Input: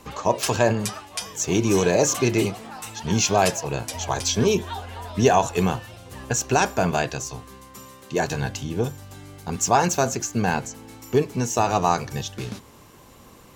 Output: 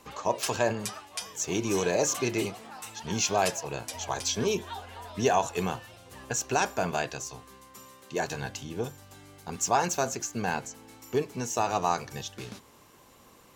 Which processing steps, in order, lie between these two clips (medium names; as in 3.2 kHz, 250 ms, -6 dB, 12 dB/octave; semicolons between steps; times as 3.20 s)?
bass shelf 240 Hz -7.5 dB; trim -5.5 dB